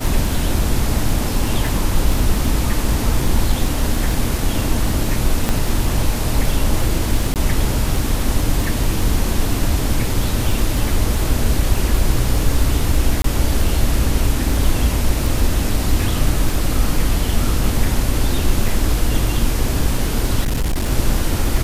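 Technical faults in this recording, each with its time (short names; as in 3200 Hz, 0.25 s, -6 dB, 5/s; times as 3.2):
crackle 10/s -18 dBFS
5.49 pop -3 dBFS
7.34–7.36 gap 18 ms
13.22–13.24 gap 23 ms
18.68 gap 3.5 ms
20.41–20.91 clipped -15 dBFS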